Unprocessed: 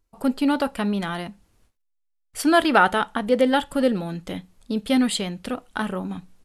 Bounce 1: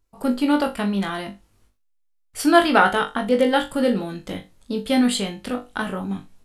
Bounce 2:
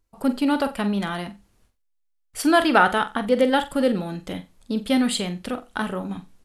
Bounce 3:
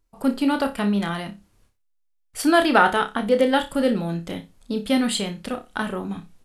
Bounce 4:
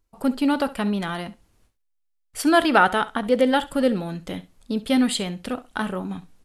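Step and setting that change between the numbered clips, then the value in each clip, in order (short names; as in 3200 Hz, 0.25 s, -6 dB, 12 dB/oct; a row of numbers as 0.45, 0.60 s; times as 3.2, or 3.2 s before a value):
flutter echo, walls apart: 3.5, 7.7, 5.1, 11.5 m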